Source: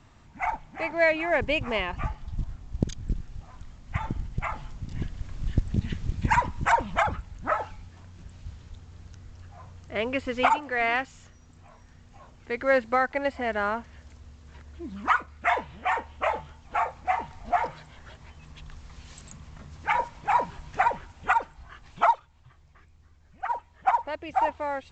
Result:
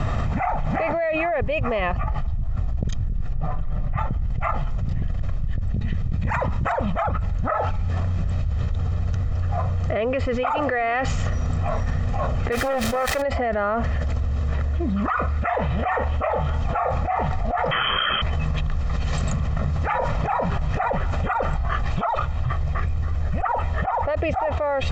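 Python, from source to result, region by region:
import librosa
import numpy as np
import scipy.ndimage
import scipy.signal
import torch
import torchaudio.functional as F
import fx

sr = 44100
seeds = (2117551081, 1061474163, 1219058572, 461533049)

y = fx.chain(x, sr, fx.lowpass(hz=1500.0, slope=6),
    fx.comb(ms=6.7, depth=0.47), at=(3.33, 3.98))
y = fx.chain(y, sr, fx.highpass(hz=54.0, slope=6),
    fx.over_compress(threshold_db=-27.0, ratio=-1.0), at=(6.23, 6.83))
y = fx.chain(y, sr, fx.crossing_spikes(level_db=-21.0),
    fx.doppler_dist(depth_ms=0.47), at=(12.52, 13.22))
y = fx.chain(y, sr, fx.peak_eq(hz=1800.0, db=10.5, octaves=0.68),
    fx.freq_invert(carrier_hz=3200), at=(17.71, 18.22))
y = fx.lowpass(y, sr, hz=1200.0, slope=6)
y = y + 0.59 * np.pad(y, (int(1.6 * sr / 1000.0), 0))[:len(y)]
y = fx.env_flatten(y, sr, amount_pct=100)
y = F.gain(torch.from_numpy(y), -7.5).numpy()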